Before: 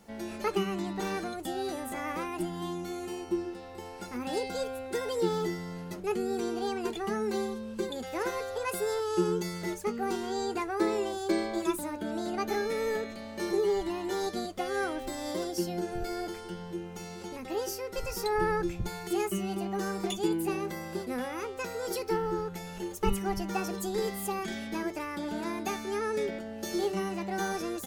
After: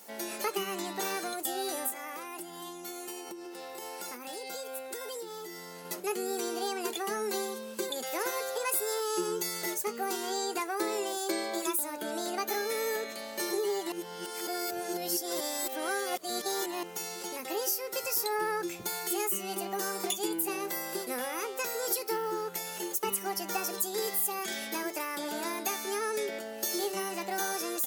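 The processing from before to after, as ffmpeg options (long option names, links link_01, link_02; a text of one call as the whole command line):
ffmpeg -i in.wav -filter_complex "[0:a]asettb=1/sr,asplit=3[link_01][link_02][link_03];[link_01]atrim=end=1.904[link_04];[link_02]atrim=start=1.9:end=5.85,asetpts=PTS-STARTPTS,afade=type=in:duration=0.004:curve=qsin,afade=type=out:start_time=3.946:duration=0.004:curve=qsin,acompressor=threshold=-39dB:ratio=12:attack=3.2:release=140:knee=1:detection=peak[link_05];[link_03]atrim=start=5.846[link_06];[link_04][link_05]acrossfade=duration=0.004:curve1=hsin:curve2=qsin[link_07];[link_07][link_06]acrossfade=duration=0.004:curve1=qsin:curve2=hsin,asplit=3[link_08][link_09][link_10];[link_08]atrim=end=13.922[link_11];[link_09]atrim=start=13.918:end=16.832,asetpts=PTS-STARTPTS,areverse[link_12];[link_10]atrim=start=16.828[link_13];[link_11][link_12]acrossfade=duration=0.004:curve1=hsin:curve2=hsin[link_14];[link_14][link_13]acrossfade=duration=0.004:curve1=hsin:curve2=hsin,highpass=390,aemphasis=mode=production:type=50fm,acompressor=threshold=-35dB:ratio=2,volume=3.5dB" out.wav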